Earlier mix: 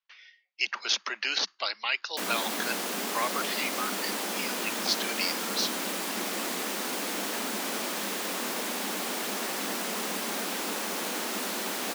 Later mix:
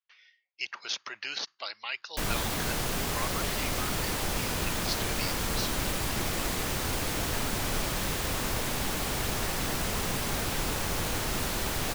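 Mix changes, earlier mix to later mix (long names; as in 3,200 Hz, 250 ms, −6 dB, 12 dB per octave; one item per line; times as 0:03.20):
speech −6.5 dB
master: remove Butterworth high-pass 190 Hz 96 dB per octave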